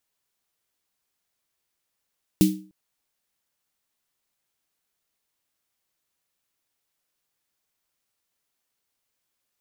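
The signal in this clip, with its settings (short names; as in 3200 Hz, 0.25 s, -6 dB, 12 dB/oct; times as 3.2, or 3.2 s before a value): snare drum length 0.30 s, tones 190 Hz, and 310 Hz, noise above 2500 Hz, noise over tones -11 dB, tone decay 0.40 s, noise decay 0.29 s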